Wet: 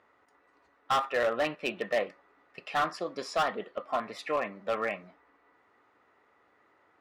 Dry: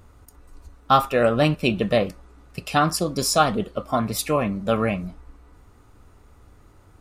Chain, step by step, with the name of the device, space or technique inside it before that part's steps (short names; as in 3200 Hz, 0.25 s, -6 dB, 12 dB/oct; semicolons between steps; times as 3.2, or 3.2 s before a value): megaphone (BPF 470–2800 Hz; bell 1900 Hz +9.5 dB 0.25 oct; hard clip -16.5 dBFS, distortion -10 dB); gain -5.5 dB